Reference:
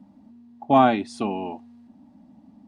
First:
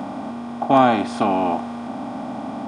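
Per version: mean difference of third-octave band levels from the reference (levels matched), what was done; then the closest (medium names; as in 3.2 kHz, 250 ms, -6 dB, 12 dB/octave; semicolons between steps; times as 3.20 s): 13.5 dB: spectral levelling over time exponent 0.4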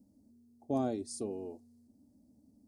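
4.0 dB: FFT filter 100 Hz 0 dB, 180 Hz -12 dB, 460 Hz 0 dB, 860 Hz -21 dB, 3 kHz -24 dB, 4.8 kHz -1 dB, 9.7 kHz +11 dB; trim -5.5 dB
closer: second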